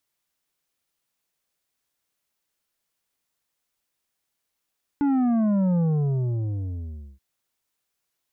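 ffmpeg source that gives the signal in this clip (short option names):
-f lavfi -i "aevalsrc='0.106*clip((2.18-t)/1.41,0,1)*tanh(2.51*sin(2*PI*290*2.18/log(65/290)*(exp(log(65/290)*t/2.18)-1)))/tanh(2.51)':d=2.18:s=44100"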